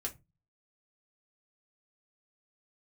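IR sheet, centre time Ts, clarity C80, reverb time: 9 ms, 27.5 dB, 0.25 s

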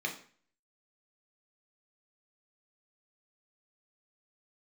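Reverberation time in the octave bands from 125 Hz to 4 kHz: 0.50, 0.50, 0.45, 0.45, 0.45, 0.40 seconds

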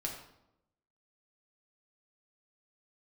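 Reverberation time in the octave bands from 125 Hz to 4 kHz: 1.0, 1.0, 0.90, 0.80, 0.60, 0.60 seconds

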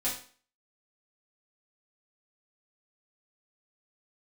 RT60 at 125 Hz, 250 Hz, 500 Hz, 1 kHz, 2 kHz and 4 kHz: 0.35, 0.45, 0.45, 0.45, 0.45, 0.40 seconds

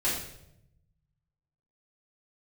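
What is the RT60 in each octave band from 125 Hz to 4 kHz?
1.8, 1.2, 0.90, 0.70, 0.65, 0.65 seconds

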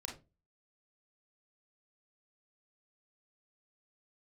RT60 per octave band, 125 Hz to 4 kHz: 0.45, 0.35, 0.30, 0.25, 0.20, 0.20 seconds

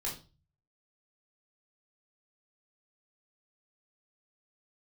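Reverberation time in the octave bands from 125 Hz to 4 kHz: 0.75, 0.45, 0.35, 0.30, 0.25, 0.35 seconds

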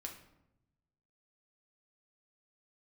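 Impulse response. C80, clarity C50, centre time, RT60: 11.5 dB, 8.0 dB, 21 ms, 0.85 s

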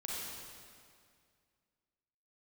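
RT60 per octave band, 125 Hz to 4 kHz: 2.4, 2.3, 2.2, 2.1, 2.0, 1.9 seconds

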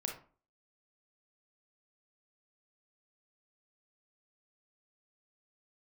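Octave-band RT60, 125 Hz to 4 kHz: 0.45, 0.45, 0.40, 0.40, 0.30, 0.25 seconds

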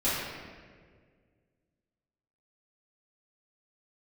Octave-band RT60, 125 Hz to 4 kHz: 2.5, 2.2, 2.1, 1.5, 1.5, 1.1 seconds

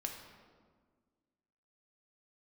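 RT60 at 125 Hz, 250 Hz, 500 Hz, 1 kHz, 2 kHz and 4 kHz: 1.9, 2.1, 1.7, 1.5, 1.2, 0.95 seconds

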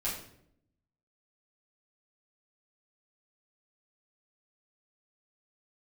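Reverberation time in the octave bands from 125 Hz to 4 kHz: 1.1, 1.0, 0.80, 0.60, 0.55, 0.50 seconds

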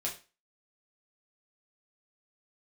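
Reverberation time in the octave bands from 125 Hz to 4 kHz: 0.30, 0.35, 0.30, 0.30, 0.30, 0.30 seconds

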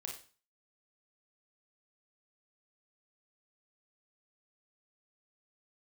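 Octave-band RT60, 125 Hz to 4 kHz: 0.45, 0.40, 0.40, 0.40, 0.40, 0.40 seconds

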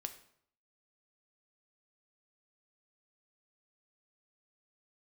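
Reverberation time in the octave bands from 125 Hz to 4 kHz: 0.70, 0.70, 0.65, 0.65, 0.55, 0.50 seconds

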